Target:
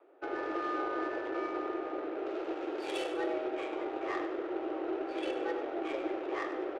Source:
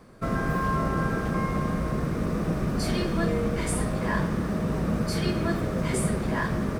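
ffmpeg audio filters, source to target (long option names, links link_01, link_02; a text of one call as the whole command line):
ffmpeg -i in.wav -filter_complex "[0:a]aexciter=amount=3.4:drive=4.1:freq=2400,highpass=frequency=160:width_type=q:width=0.5412,highpass=frequency=160:width_type=q:width=1.307,lowpass=frequency=3500:width_type=q:width=0.5176,lowpass=frequency=3500:width_type=q:width=0.7071,lowpass=frequency=3500:width_type=q:width=1.932,afreqshift=160,adynamicsmooth=sensitivity=1.5:basefreq=1400,asettb=1/sr,asplit=3[link_01][link_02][link_03];[link_01]atrim=end=2.264[link_04];[link_02]atrim=start=2.26:end=3.12,asetpts=PTS-STARTPTS,afade=type=in:duration=0.004:curve=qsin,afade=type=out:start_time=0.856:duration=0.004:curve=qsin,aemphasis=mode=production:type=75fm[link_05];[link_03]atrim=start=3.116[link_06];[link_04][link_05]acrossfade=duration=0.004:curve1=hsin:curve2=qsin[link_07];[link_07][link_06]acrossfade=duration=0.004:curve1=qsin:curve2=hsin,asplit=2[link_08][link_09];[link_09]aecho=0:1:98|196|294|392:0.282|0.113|0.0451|0.018[link_10];[link_08][link_10]amix=inputs=2:normalize=0,volume=-7.5dB" out.wav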